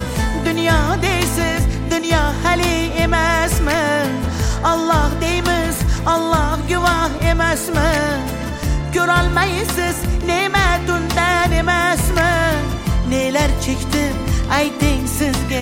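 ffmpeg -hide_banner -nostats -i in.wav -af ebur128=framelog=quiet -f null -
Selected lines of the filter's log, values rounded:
Integrated loudness:
  I:         -17.1 LUFS
  Threshold: -27.1 LUFS
Loudness range:
  LRA:         1.3 LU
  Threshold: -37.0 LUFS
  LRA low:   -17.5 LUFS
  LRA high:  -16.2 LUFS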